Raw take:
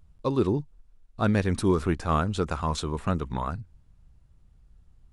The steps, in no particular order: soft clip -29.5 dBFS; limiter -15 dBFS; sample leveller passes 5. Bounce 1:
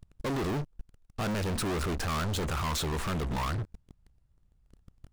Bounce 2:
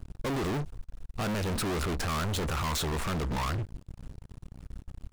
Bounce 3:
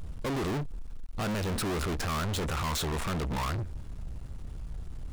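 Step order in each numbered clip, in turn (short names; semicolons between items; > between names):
sample leveller > limiter > soft clip; limiter > sample leveller > soft clip; limiter > soft clip > sample leveller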